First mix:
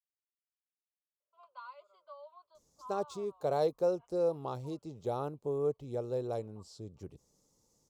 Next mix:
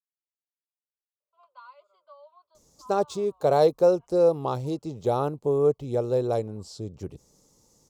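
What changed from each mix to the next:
speech +10.5 dB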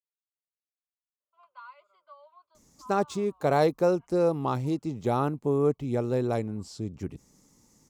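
master: add ten-band graphic EQ 250 Hz +7 dB, 500 Hz -7 dB, 2 kHz +9 dB, 4 kHz -4 dB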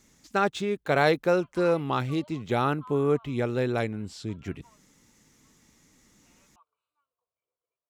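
speech: entry -2.55 s; master: add high-order bell 2.3 kHz +10 dB

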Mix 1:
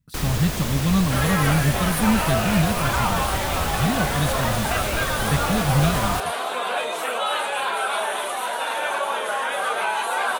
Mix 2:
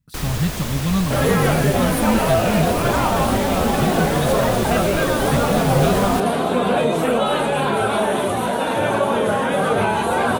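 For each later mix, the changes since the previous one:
second sound: remove high-pass 930 Hz 12 dB/octave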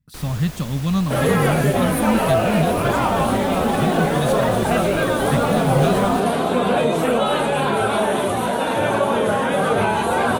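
first sound -8.5 dB

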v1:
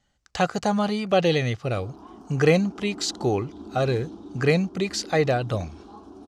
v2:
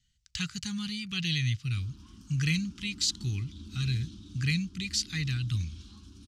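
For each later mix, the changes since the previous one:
background +7.0 dB; master: add Chebyshev band-stop 120–3000 Hz, order 2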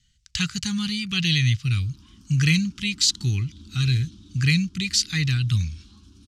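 speech +8.5 dB

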